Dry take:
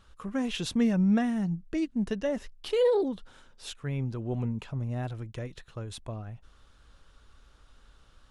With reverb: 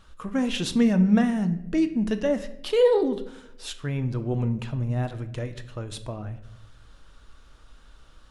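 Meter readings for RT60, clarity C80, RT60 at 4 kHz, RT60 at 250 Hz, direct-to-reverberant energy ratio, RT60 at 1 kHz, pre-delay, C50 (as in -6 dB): 0.85 s, 15.5 dB, 0.50 s, 1.1 s, 9.0 dB, 0.65 s, 3 ms, 13.0 dB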